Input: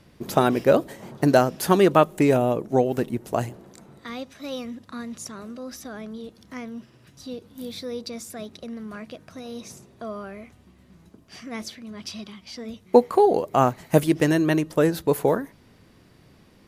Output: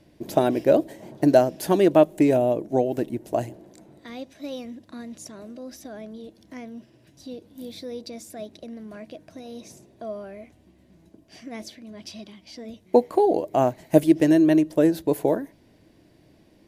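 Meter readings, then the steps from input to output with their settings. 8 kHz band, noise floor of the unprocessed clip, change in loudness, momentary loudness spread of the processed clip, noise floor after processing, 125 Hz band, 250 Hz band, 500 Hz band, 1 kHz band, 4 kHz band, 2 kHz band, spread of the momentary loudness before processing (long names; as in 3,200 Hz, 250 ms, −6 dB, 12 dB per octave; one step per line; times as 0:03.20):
−4.5 dB, −55 dBFS, +1.0 dB, 22 LU, −57 dBFS, −4.0 dB, +2.0 dB, 0.0 dB, −4.0 dB, −4.5 dB, −6.0 dB, 19 LU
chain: thirty-one-band graphic EQ 315 Hz +10 dB, 630 Hz +8 dB, 1,250 Hz −10 dB
level −4.5 dB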